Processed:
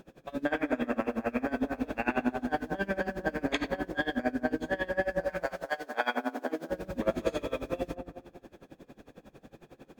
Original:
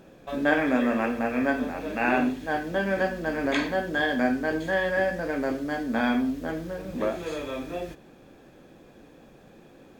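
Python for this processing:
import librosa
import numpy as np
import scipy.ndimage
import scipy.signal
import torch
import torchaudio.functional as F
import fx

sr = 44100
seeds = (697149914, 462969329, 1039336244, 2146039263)

p1 = fx.highpass(x, sr, hz=fx.line((5.25, 760.0), (6.69, 230.0)), slope=24, at=(5.25, 6.69), fade=0.02)
p2 = p1 + fx.echo_wet_lowpass(p1, sr, ms=200, feedback_pct=37, hz=1300.0, wet_db=-4.5, dry=0)
p3 = fx.rider(p2, sr, range_db=3, speed_s=0.5)
y = p3 * 10.0 ** (-23 * (0.5 - 0.5 * np.cos(2.0 * np.pi * 11.0 * np.arange(len(p3)) / sr)) / 20.0)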